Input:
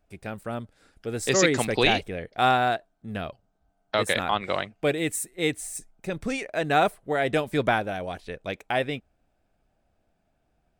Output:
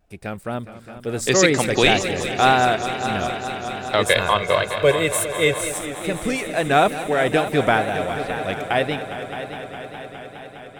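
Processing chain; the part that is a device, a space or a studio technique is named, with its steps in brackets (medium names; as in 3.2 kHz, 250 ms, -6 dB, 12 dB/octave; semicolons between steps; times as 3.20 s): multi-head tape echo (multi-head delay 206 ms, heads all three, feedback 72%, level -15.5 dB; wow and flutter); 4.06–5.72 s: comb 1.9 ms, depth 73%; trim +5 dB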